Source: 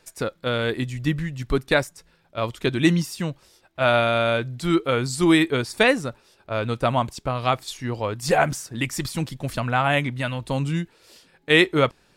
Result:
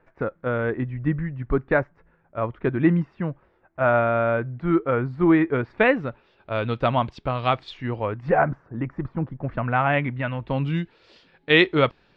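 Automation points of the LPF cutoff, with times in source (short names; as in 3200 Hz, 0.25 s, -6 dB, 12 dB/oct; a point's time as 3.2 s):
LPF 24 dB/oct
5.44 s 1800 Hz
6.54 s 3700 Hz
7.64 s 3700 Hz
8.61 s 1400 Hz
9.31 s 1400 Hz
9.76 s 2400 Hz
10.42 s 2400 Hz
10.82 s 4100 Hz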